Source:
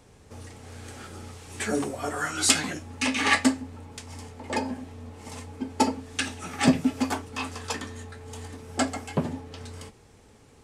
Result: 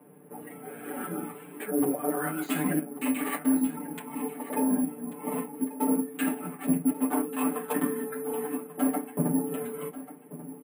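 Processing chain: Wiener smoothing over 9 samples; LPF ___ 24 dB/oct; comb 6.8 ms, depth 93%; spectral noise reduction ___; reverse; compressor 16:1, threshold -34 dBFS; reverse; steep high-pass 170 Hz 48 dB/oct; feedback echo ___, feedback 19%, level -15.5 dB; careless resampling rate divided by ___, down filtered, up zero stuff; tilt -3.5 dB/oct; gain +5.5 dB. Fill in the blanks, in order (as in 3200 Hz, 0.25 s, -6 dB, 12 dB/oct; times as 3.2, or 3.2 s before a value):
3300 Hz, 9 dB, 1.139 s, 4×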